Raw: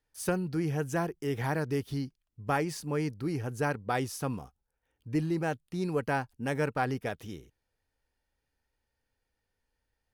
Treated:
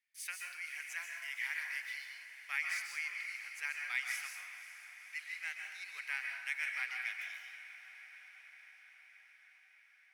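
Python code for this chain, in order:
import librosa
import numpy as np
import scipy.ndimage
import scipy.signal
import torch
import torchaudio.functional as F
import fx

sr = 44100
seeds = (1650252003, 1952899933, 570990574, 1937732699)

p1 = fx.ladder_highpass(x, sr, hz=2000.0, resonance_pct=75)
p2 = p1 + fx.echo_diffused(p1, sr, ms=532, feedback_pct=69, wet_db=-13.5, dry=0)
p3 = fx.rev_plate(p2, sr, seeds[0], rt60_s=1.0, hf_ratio=0.65, predelay_ms=115, drr_db=1.5)
y = p3 * librosa.db_to_amplitude(5.5)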